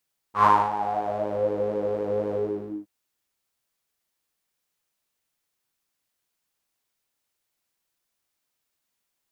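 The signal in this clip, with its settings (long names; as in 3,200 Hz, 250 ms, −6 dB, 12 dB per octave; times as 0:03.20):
subtractive patch with pulse-width modulation G#2, detune 18 cents, noise −13.5 dB, filter bandpass, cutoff 280 Hz, Q 9.8, filter envelope 2 octaves, filter decay 1.21 s, attack 107 ms, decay 0.25 s, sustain −13 dB, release 0.53 s, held 1.99 s, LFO 4 Hz, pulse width 25%, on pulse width 10%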